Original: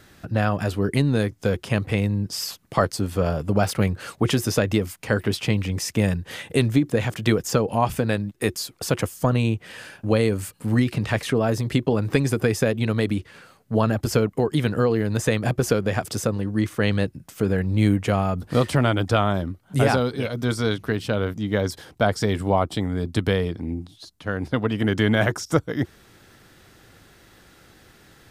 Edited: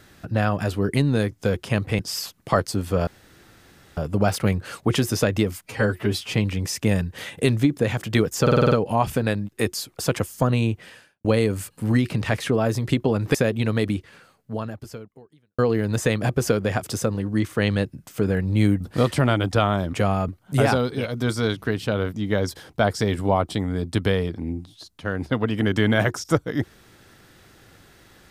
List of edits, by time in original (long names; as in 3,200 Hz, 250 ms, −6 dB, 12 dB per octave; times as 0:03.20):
0:01.99–0:02.24: remove
0:03.32: splice in room tone 0.90 s
0:05.01–0:05.46: time-stretch 1.5×
0:07.54: stutter 0.05 s, 7 plays
0:09.62–0:10.07: fade out quadratic
0:12.17–0:12.56: remove
0:13.12–0:14.80: fade out quadratic
0:18.02–0:18.37: move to 0:19.50